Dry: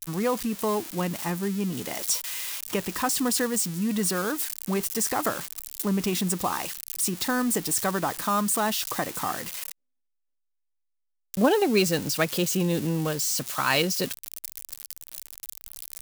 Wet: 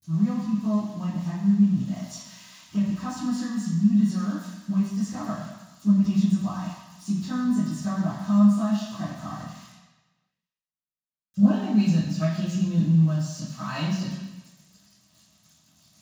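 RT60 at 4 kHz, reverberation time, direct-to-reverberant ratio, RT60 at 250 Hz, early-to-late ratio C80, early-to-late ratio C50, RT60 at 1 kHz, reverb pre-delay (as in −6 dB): 1.1 s, 1.1 s, −13.5 dB, 0.95 s, 4.0 dB, 0.5 dB, 1.2 s, 3 ms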